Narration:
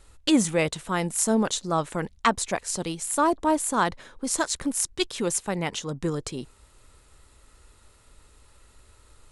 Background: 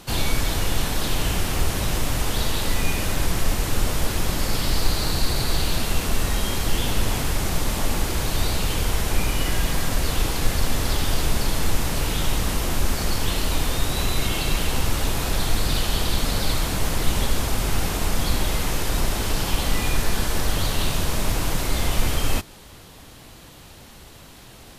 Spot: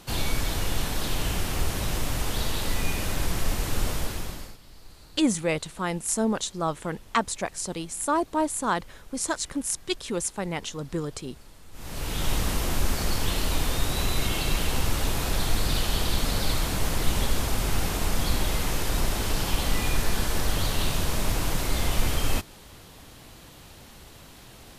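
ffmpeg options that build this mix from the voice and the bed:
ffmpeg -i stem1.wav -i stem2.wav -filter_complex "[0:a]adelay=4900,volume=-2.5dB[link_01];[1:a]volume=20.5dB,afade=type=out:start_time=3.89:duration=0.68:silence=0.0668344,afade=type=in:start_time=11.72:duration=0.6:silence=0.0562341[link_02];[link_01][link_02]amix=inputs=2:normalize=0" out.wav

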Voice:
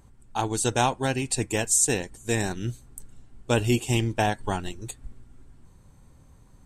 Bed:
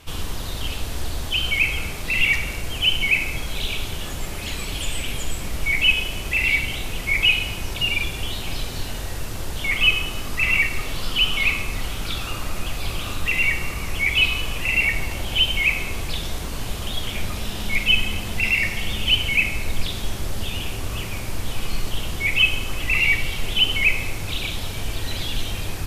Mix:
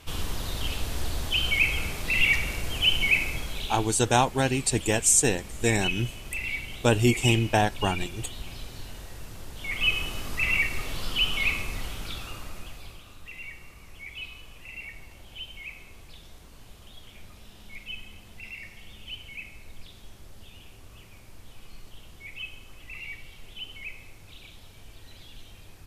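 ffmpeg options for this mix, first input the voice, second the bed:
ffmpeg -i stem1.wav -i stem2.wav -filter_complex "[0:a]adelay=3350,volume=1.5dB[link_01];[1:a]volume=4dB,afade=type=out:start_time=3.13:duration=0.8:silence=0.334965,afade=type=in:start_time=9.56:duration=0.46:silence=0.446684,afade=type=out:start_time=11.56:duration=1.48:silence=0.16788[link_02];[link_01][link_02]amix=inputs=2:normalize=0" out.wav

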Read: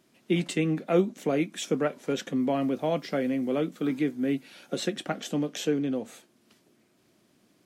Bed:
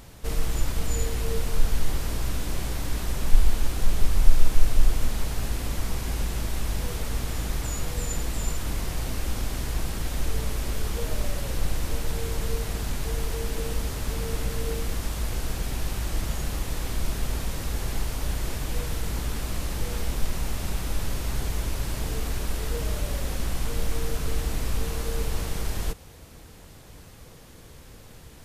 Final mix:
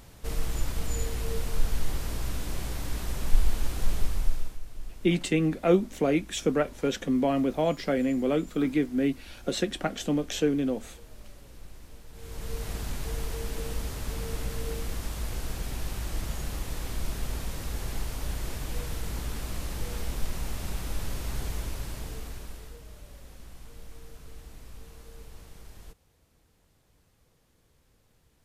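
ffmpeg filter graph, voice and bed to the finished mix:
ffmpeg -i stem1.wav -i stem2.wav -filter_complex "[0:a]adelay=4750,volume=1.5dB[link_01];[1:a]volume=12dB,afade=type=out:start_time=3.93:duration=0.66:silence=0.149624,afade=type=in:start_time=12.12:duration=0.58:silence=0.158489,afade=type=out:start_time=21.49:duration=1.32:silence=0.188365[link_02];[link_01][link_02]amix=inputs=2:normalize=0" out.wav

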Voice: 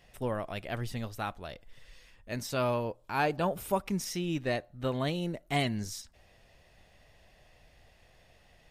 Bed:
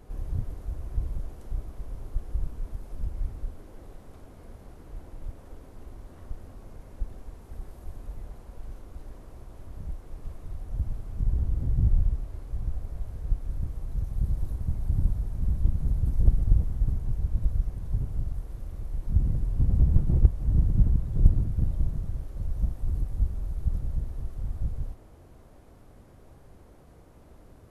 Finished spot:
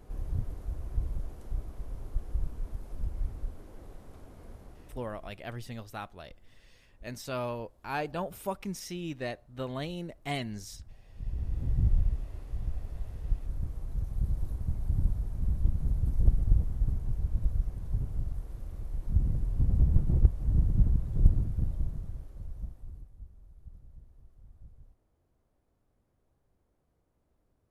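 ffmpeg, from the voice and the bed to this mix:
ffmpeg -i stem1.wav -i stem2.wav -filter_complex "[0:a]adelay=4750,volume=-4.5dB[link_01];[1:a]volume=14dB,afade=type=out:start_time=4.53:duration=0.93:silence=0.141254,afade=type=in:start_time=11.06:duration=0.65:silence=0.158489,afade=type=out:start_time=21.34:duration=1.78:silence=0.112202[link_02];[link_01][link_02]amix=inputs=2:normalize=0" out.wav

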